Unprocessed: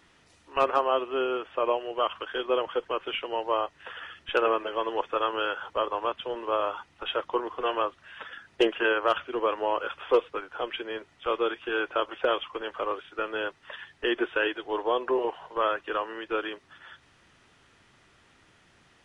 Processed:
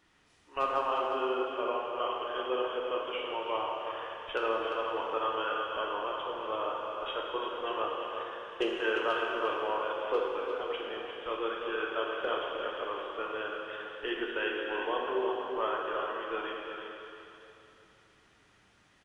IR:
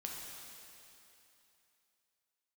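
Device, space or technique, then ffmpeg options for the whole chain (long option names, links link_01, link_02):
cave: -filter_complex "[0:a]aecho=1:1:349:0.398[link_01];[1:a]atrim=start_sample=2205[link_02];[link_01][link_02]afir=irnorm=-1:irlink=0,volume=-4dB"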